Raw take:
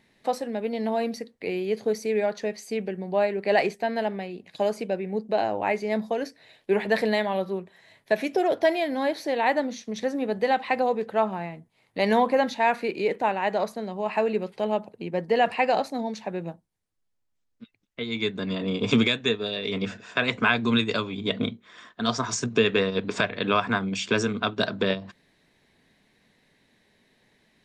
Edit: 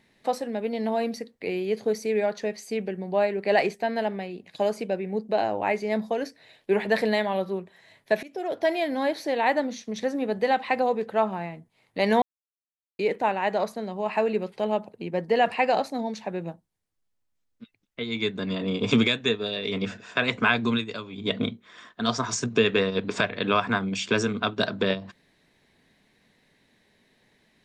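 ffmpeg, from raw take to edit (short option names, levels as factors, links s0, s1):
-filter_complex "[0:a]asplit=6[s0][s1][s2][s3][s4][s5];[s0]atrim=end=8.23,asetpts=PTS-STARTPTS,afade=t=out:st=8.226:d=0.004:c=hsin:silence=0.1[s6];[s1]atrim=start=8.23:end=12.22,asetpts=PTS-STARTPTS,afade=t=in:d=0.6:silence=0.1,afade=t=out:st=3.986:d=0.004:c=hsin[s7];[s2]atrim=start=12.22:end=12.99,asetpts=PTS-STARTPTS,volume=0[s8];[s3]atrim=start=12.99:end=20.94,asetpts=PTS-STARTPTS,afade=t=in:d=0.004:c=hsin,afade=t=out:st=7.68:d=0.27:c=qua:silence=0.375837[s9];[s4]atrim=start=20.94:end=21.01,asetpts=PTS-STARTPTS,volume=0.376[s10];[s5]atrim=start=21.01,asetpts=PTS-STARTPTS,afade=t=in:d=0.27:c=qua:silence=0.375837[s11];[s6][s7][s8][s9][s10][s11]concat=n=6:v=0:a=1"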